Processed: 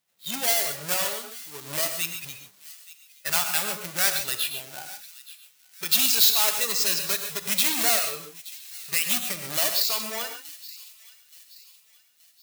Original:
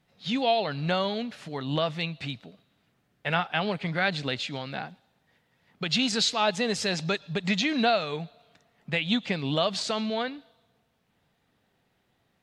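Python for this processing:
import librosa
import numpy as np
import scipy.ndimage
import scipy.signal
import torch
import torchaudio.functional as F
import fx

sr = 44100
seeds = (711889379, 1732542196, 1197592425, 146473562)

p1 = fx.halfwave_hold(x, sr)
p2 = fx.noise_reduce_blind(p1, sr, reduce_db=10)
p3 = (np.mod(10.0 ** (19.5 / 20.0) * p2 + 1.0, 2.0) - 1.0) / 10.0 ** (19.5 / 20.0)
p4 = p2 + F.gain(torch.from_numpy(p3), -8.0).numpy()
p5 = fx.tilt_eq(p4, sr, slope=4.5)
p6 = p5 + fx.echo_wet_highpass(p5, sr, ms=875, feedback_pct=41, hz=2400.0, wet_db=-18, dry=0)
p7 = fx.rev_gated(p6, sr, seeds[0], gate_ms=160, shape='rising', drr_db=6.0)
y = F.gain(torch.from_numpy(p7), -8.5).numpy()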